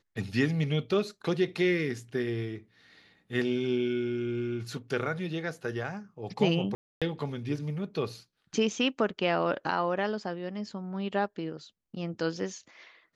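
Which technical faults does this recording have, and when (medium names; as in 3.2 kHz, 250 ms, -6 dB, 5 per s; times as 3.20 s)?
6.75–7.02 s: dropout 266 ms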